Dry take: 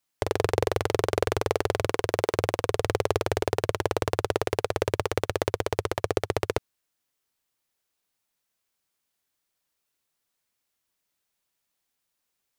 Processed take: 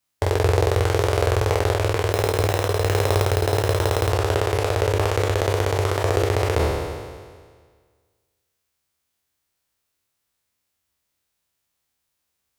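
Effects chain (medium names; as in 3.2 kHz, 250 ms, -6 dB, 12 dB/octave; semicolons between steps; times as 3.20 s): spectral sustain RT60 1.72 s; peaking EQ 75 Hz +11 dB 0.98 oct; 2.12–4.11 s: sample-rate reducer 4.6 kHz, jitter 0%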